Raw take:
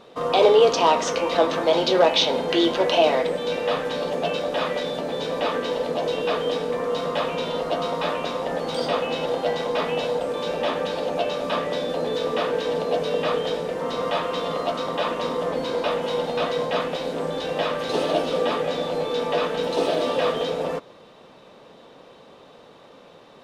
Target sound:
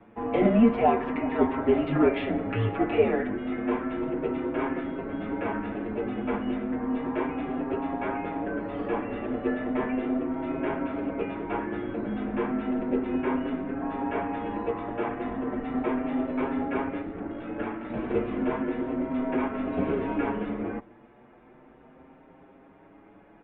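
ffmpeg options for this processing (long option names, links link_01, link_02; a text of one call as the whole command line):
ffmpeg -i in.wav -filter_complex "[0:a]asplit=3[link_01][link_02][link_03];[link_01]afade=type=out:start_time=17.01:duration=0.02[link_04];[link_02]aeval=exprs='val(0)*sin(2*PI*28*n/s)':channel_layout=same,afade=type=in:start_time=17.01:duration=0.02,afade=type=out:start_time=18.08:duration=0.02[link_05];[link_03]afade=type=in:start_time=18.08:duration=0.02[link_06];[link_04][link_05][link_06]amix=inputs=3:normalize=0,bandreject=frequency=1200:width=22,acrossover=split=340|830|1400[link_07][link_08][link_09][link_10];[link_07]aeval=exprs='abs(val(0))':channel_layout=same[link_11];[link_11][link_08][link_09][link_10]amix=inputs=4:normalize=0,highpass=frequency=150:width_type=q:width=0.5412,highpass=frequency=150:width_type=q:width=1.307,lowpass=frequency=2400:width_type=q:width=0.5176,lowpass=frequency=2400:width_type=q:width=0.7071,lowpass=frequency=2400:width_type=q:width=1.932,afreqshift=-230,asplit=2[link_12][link_13];[link_13]adelay=6.6,afreqshift=0.34[link_14];[link_12][link_14]amix=inputs=2:normalize=1" out.wav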